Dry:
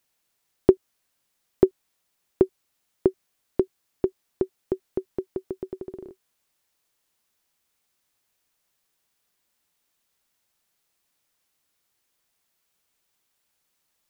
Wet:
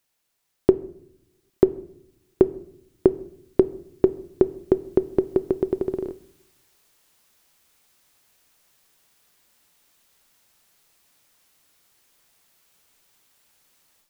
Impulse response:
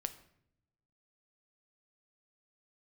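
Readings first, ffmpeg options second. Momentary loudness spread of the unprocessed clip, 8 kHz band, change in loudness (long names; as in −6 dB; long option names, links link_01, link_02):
14 LU, can't be measured, +3.5 dB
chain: -filter_complex "[0:a]dynaudnorm=framelen=280:gausssize=3:maxgain=12dB,asplit=2[link_01][link_02];[1:a]atrim=start_sample=2205[link_03];[link_02][link_03]afir=irnorm=-1:irlink=0,volume=2.5dB[link_04];[link_01][link_04]amix=inputs=2:normalize=0,volume=-7dB"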